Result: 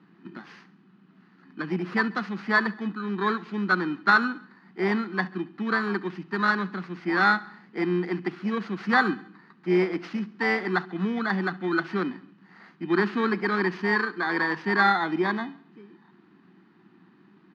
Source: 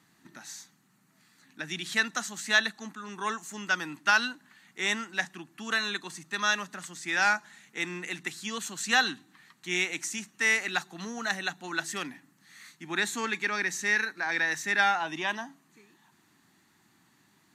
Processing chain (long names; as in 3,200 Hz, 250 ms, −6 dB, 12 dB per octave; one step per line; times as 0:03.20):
samples in bit-reversed order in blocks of 16 samples
loudspeaker in its box 180–2,900 Hz, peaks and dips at 190 Hz +9 dB, 360 Hz +7 dB, 610 Hz −9 dB, 880 Hz −4 dB
repeating echo 68 ms, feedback 55%, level −21 dB
level +9 dB